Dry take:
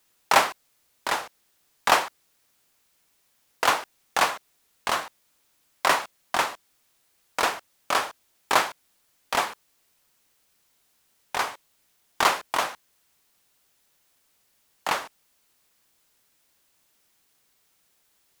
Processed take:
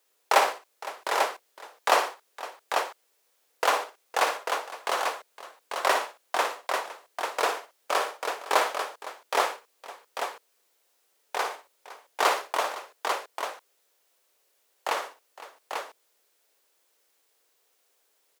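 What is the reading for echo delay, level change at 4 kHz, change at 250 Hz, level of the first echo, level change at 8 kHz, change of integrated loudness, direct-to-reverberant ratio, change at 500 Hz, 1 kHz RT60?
57 ms, -2.5 dB, -4.5 dB, -8.5 dB, -2.5 dB, -2.5 dB, no reverb, +2.5 dB, no reverb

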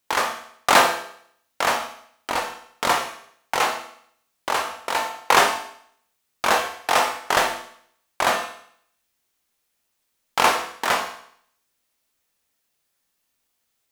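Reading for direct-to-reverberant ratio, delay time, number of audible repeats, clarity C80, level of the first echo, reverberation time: 3.5 dB, no echo, no echo, 11.0 dB, no echo, 0.65 s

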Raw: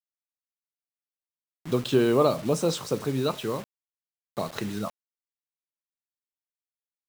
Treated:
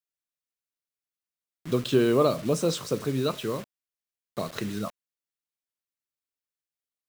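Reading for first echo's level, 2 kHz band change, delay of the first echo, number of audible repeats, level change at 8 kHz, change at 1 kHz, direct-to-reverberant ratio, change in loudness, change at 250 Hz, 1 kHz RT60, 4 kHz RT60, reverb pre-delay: no echo, 0.0 dB, no echo, no echo, 0.0 dB, -2.0 dB, no reverb, -0.5 dB, 0.0 dB, no reverb, no reverb, no reverb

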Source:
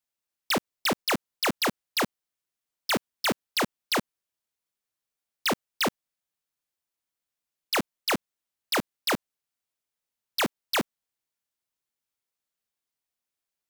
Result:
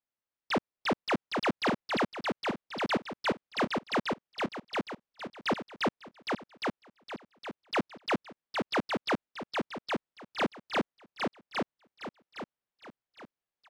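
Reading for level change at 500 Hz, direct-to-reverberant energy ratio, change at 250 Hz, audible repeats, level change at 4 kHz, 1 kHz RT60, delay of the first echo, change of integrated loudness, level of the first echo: +0.5 dB, no reverb, +0.5 dB, 4, -7.0 dB, no reverb, 813 ms, -5.0 dB, -3.0 dB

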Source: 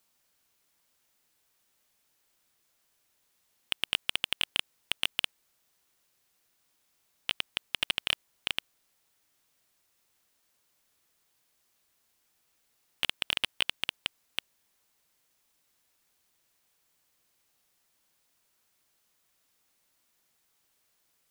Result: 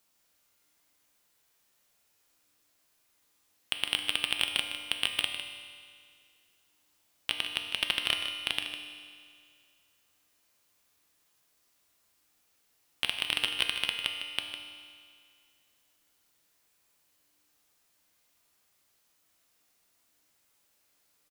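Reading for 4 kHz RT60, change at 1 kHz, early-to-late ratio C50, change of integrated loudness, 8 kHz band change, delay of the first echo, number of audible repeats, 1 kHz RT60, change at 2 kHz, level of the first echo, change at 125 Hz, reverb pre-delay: 2.0 s, +2.0 dB, 4.5 dB, +1.0 dB, +1.5 dB, 154 ms, 1, 2.1 s, +2.0 dB, -10.0 dB, +1.0 dB, 5 ms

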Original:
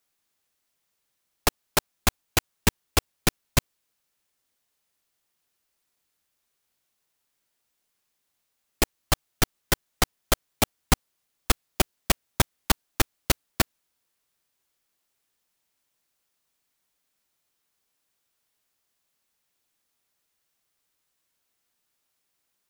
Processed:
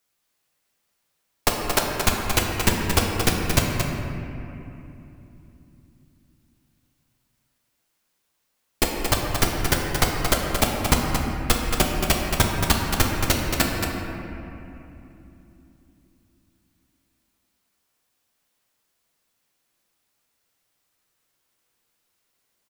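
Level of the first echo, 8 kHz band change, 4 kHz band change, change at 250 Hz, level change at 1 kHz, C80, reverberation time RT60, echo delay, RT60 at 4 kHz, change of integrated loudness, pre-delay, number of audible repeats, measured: -6.0 dB, +3.0 dB, +4.0 dB, +6.5 dB, +5.5 dB, 1.0 dB, 3.0 s, 226 ms, 1.7 s, +4.0 dB, 8 ms, 1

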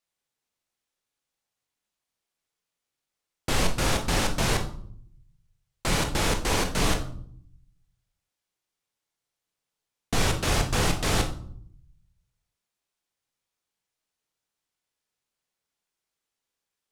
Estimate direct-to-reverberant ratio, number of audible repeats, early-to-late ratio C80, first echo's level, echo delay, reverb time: 4.0 dB, no echo, 14.0 dB, no echo, no echo, 0.60 s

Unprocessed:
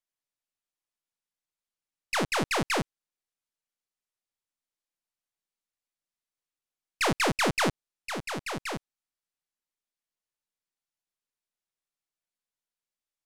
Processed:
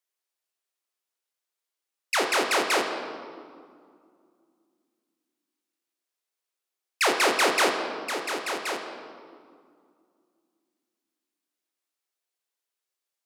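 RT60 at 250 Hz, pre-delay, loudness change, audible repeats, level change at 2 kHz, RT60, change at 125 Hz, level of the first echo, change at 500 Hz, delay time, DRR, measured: 3.2 s, 5 ms, +4.0 dB, no echo, +5.0 dB, 2.2 s, under -15 dB, no echo, +5.0 dB, no echo, 3.0 dB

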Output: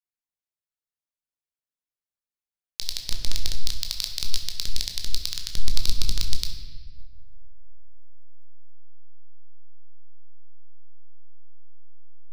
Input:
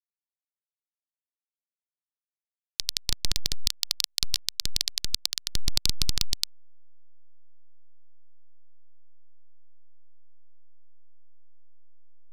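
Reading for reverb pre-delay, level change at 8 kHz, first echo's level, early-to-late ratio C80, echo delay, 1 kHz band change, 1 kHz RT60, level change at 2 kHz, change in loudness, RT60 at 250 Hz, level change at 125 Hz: 17 ms, -2.5 dB, no echo, 8.5 dB, no echo, -2.5 dB, 1.2 s, -2.0 dB, -2.0 dB, 1.9 s, +5.0 dB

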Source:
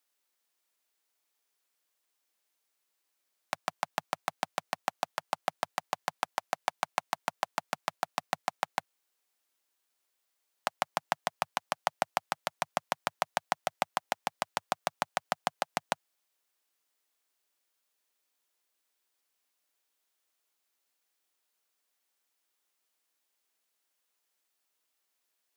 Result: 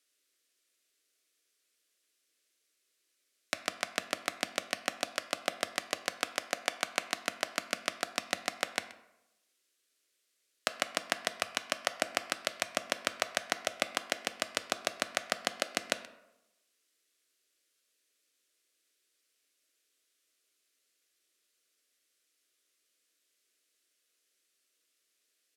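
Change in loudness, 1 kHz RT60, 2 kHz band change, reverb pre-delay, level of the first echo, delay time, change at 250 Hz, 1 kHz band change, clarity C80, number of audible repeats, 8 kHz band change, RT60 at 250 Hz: +0.5 dB, 0.90 s, +3.5 dB, 10 ms, -20.0 dB, 128 ms, +3.0 dB, -6.5 dB, 15.0 dB, 1, +5.5 dB, 0.95 s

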